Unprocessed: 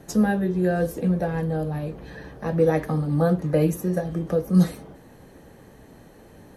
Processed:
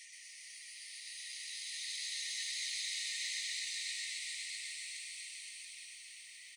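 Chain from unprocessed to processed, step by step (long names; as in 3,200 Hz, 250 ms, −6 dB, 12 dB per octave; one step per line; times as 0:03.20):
lower of the sound and its delayed copy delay 4.9 ms
brick-wall band-pass 1,800–10,000 Hz
extreme stretch with random phases 18×, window 0.25 s, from 0:04.48
reversed playback
upward compression, threshold −52 dBFS
reversed playback
noise that follows the level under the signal 29 dB
reverb reduction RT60 0.51 s
on a send: echo with shifted repeats 124 ms, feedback 52%, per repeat +110 Hz, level −3 dB
on the sum: feedback echo at a low word length 140 ms, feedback 80%, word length 12 bits, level −9 dB
level +1 dB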